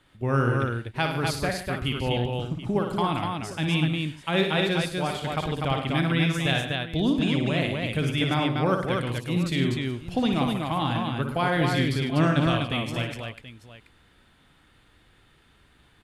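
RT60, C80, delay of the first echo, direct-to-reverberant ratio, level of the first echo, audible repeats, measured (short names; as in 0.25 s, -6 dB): none, none, 58 ms, none, -6.0 dB, 6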